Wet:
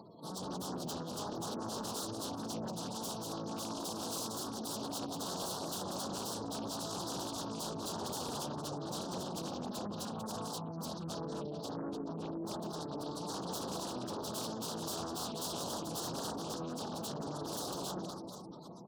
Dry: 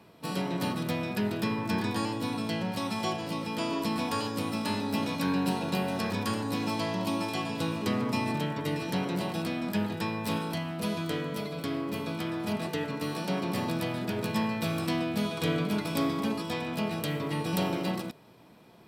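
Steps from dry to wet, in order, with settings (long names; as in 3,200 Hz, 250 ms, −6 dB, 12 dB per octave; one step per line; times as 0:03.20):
0:05.85–0:08.06: parametric band 12,000 Hz −14 dB 0.46 octaves
upward compression, threshold −39 dBFS
high-shelf EQ 2,500 Hz +7.5 dB
wrap-around overflow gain 26 dB
Butterworth band-reject 2,100 Hz, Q 0.88
reverse bouncing-ball delay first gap 190 ms, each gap 1.3×, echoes 5
gate on every frequency bin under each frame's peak −15 dB strong
high-pass filter 110 Hz 12 dB per octave
highs frequency-modulated by the lows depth 0.42 ms
level −6.5 dB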